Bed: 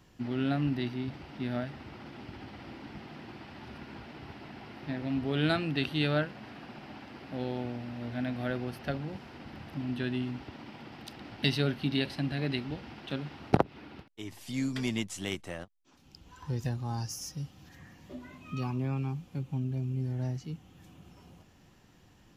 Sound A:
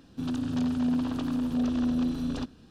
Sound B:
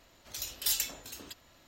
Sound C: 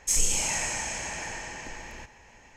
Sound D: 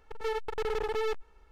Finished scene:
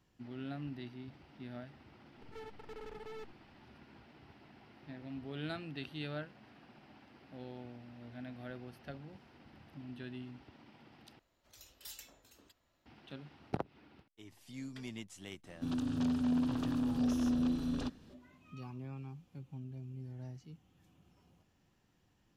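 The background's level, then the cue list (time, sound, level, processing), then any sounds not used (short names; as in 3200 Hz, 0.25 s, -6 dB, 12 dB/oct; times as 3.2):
bed -13 dB
2.11 add D -17 dB
11.19 replace with B -14.5 dB + high shelf 2600 Hz -6 dB
15.44 add A -5 dB
not used: C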